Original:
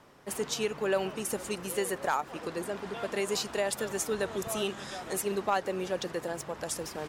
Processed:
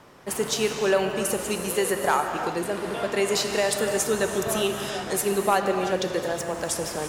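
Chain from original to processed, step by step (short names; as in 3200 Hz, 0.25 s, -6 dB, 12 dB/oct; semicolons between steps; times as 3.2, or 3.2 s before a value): non-linear reverb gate 0.39 s flat, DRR 5 dB; gain +6.5 dB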